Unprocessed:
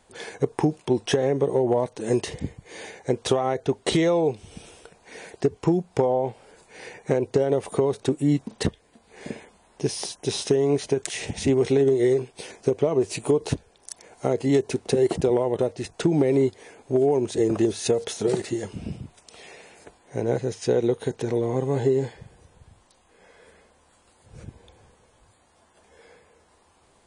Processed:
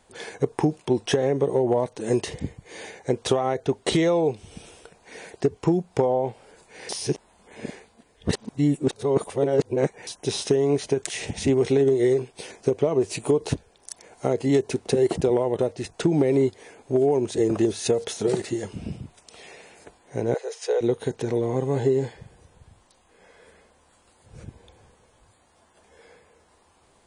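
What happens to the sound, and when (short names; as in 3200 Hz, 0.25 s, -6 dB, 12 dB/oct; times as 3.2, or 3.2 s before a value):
6.89–10.07 reverse
20.34–20.81 elliptic high-pass 430 Hz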